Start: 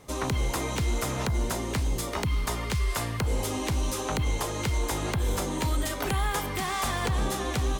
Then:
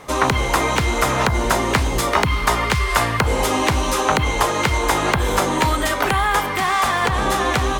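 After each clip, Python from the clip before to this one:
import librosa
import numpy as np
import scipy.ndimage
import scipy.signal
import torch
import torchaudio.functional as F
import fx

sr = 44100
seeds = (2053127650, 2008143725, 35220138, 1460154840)

y = fx.peak_eq(x, sr, hz=1300.0, db=10.0, octaves=2.8)
y = fx.hum_notches(y, sr, base_hz=50, count=2)
y = fx.rider(y, sr, range_db=10, speed_s=0.5)
y = y * 10.0 ** (6.0 / 20.0)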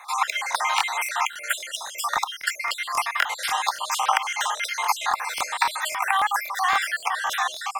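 y = fx.spec_dropout(x, sr, seeds[0], share_pct=53)
y = scipy.signal.sosfilt(scipy.signal.cheby1(4, 1.0, 790.0, 'highpass', fs=sr, output='sos'), y)
y = fx.buffer_crackle(y, sr, first_s=0.5, period_s=0.27, block=1024, kind='repeat')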